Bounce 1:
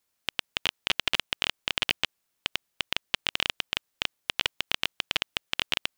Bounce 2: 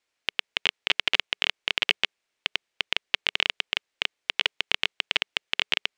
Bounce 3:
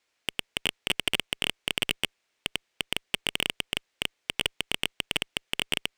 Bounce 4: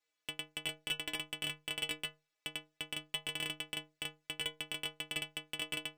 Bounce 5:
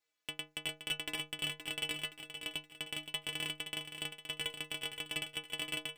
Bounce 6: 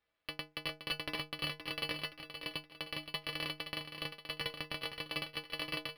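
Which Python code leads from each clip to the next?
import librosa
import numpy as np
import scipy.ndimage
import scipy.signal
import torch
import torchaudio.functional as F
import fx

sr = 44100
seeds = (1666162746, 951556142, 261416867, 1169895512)

y1 = fx.curve_eq(x, sr, hz=(190.0, 420.0, 1200.0, 2200.0, 7800.0, 14000.0), db=(0, 9, 6, 12, 2, -15))
y1 = y1 * librosa.db_to_amplitude(-6.5)
y2 = fx.tube_stage(y1, sr, drive_db=18.0, bias=0.4)
y2 = y2 * librosa.db_to_amplitude(5.5)
y3 = fx.stiff_resonator(y2, sr, f0_hz=150.0, decay_s=0.3, stiffness=0.008)
y3 = y3 * librosa.db_to_amplitude(1.5)
y4 = fx.echo_feedback(y3, sr, ms=521, feedback_pct=45, wet_db=-9)
y5 = np.interp(np.arange(len(y4)), np.arange(len(y4))[::6], y4[::6])
y5 = y5 * librosa.db_to_amplitude(2.5)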